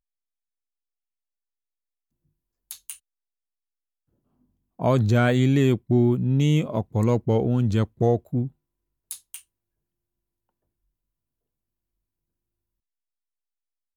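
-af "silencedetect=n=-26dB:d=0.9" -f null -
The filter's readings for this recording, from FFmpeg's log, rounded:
silence_start: 0.00
silence_end: 2.71 | silence_duration: 2.71
silence_start: 2.91
silence_end: 4.82 | silence_duration: 1.91
silence_start: 9.35
silence_end: 13.97 | silence_duration: 4.62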